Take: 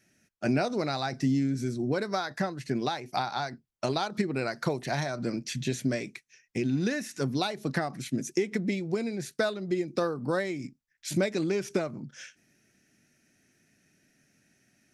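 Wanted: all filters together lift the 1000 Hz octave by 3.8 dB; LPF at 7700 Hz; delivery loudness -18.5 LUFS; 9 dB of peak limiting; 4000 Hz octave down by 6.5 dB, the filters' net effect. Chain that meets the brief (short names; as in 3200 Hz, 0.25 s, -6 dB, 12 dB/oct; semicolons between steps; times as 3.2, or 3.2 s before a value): LPF 7700 Hz; bell 1000 Hz +6 dB; bell 4000 Hz -7.5 dB; gain +14 dB; limiter -7 dBFS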